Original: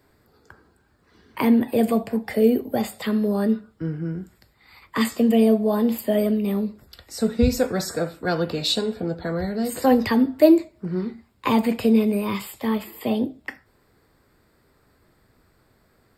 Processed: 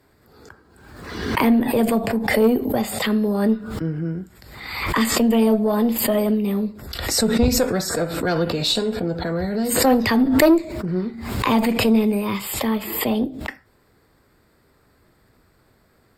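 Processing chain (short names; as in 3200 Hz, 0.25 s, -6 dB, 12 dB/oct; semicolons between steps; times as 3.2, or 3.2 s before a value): tube stage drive 11 dB, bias 0.35; backwards sustainer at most 50 dB/s; gain +3 dB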